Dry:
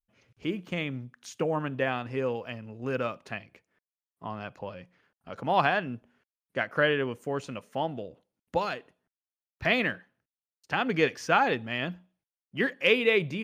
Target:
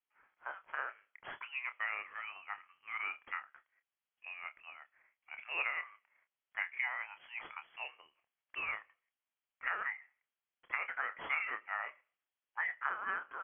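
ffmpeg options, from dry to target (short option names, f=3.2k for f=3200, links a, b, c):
-filter_complex "[0:a]highpass=f=1.2k:w=0.5412,highpass=f=1.2k:w=1.3066,acompressor=threshold=-32dB:ratio=8,asetrate=37084,aresample=44100,atempo=1.18921,acrusher=samples=6:mix=1:aa=0.000001,asplit=2[a][b];[b]adelay=28,volume=-10dB[c];[a][c]amix=inputs=2:normalize=0,lowpass=f=2.9k:t=q:w=0.5098,lowpass=f=2.9k:t=q:w=0.6013,lowpass=f=2.9k:t=q:w=0.9,lowpass=f=2.9k:t=q:w=2.563,afreqshift=-3400"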